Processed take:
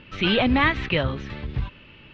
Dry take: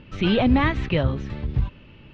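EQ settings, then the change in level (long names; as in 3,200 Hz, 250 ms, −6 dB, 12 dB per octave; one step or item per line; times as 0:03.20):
low-pass filter 4,700 Hz 12 dB per octave
low-shelf EQ 450 Hz −11.5 dB
parametric band 770 Hz −3.5 dB 1.4 octaves
+6.5 dB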